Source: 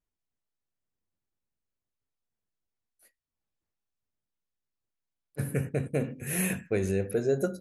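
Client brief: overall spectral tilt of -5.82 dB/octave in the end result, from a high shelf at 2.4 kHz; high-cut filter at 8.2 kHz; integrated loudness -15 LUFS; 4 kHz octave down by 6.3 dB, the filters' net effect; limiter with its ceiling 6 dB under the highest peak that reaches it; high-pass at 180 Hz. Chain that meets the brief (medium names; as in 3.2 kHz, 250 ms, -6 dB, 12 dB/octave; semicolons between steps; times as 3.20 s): high-pass 180 Hz; low-pass 8.2 kHz; treble shelf 2.4 kHz -5.5 dB; peaking EQ 4 kHz -3.5 dB; trim +20 dB; peak limiter -2.5 dBFS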